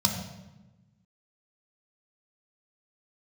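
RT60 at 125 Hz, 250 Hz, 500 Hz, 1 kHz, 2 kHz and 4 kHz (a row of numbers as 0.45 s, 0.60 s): 1.7 s, 1.5 s, 1.1 s, 1.0 s, 0.90 s, 0.80 s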